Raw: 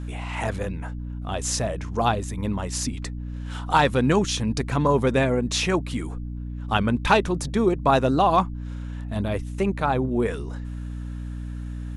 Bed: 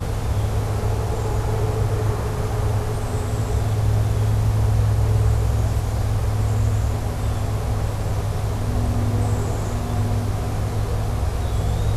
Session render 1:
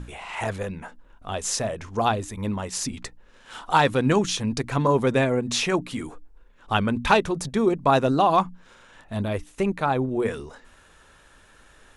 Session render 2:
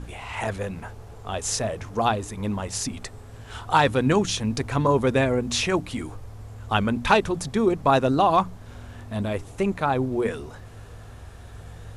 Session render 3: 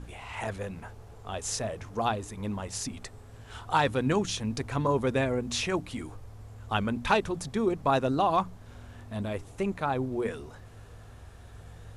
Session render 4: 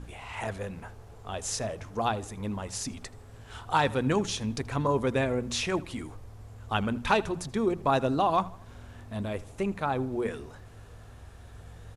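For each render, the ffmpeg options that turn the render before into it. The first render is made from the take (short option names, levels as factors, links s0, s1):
-af "bandreject=f=60:t=h:w=6,bandreject=f=120:t=h:w=6,bandreject=f=180:t=h:w=6,bandreject=f=240:t=h:w=6,bandreject=f=300:t=h:w=6"
-filter_complex "[1:a]volume=0.1[s0];[0:a][s0]amix=inputs=2:normalize=0"
-af "volume=0.501"
-filter_complex "[0:a]asplit=2[s0][s1];[s1]adelay=80,lowpass=f=4900:p=1,volume=0.1,asplit=2[s2][s3];[s3]adelay=80,lowpass=f=4900:p=1,volume=0.47,asplit=2[s4][s5];[s5]adelay=80,lowpass=f=4900:p=1,volume=0.47,asplit=2[s6][s7];[s7]adelay=80,lowpass=f=4900:p=1,volume=0.47[s8];[s0][s2][s4][s6][s8]amix=inputs=5:normalize=0"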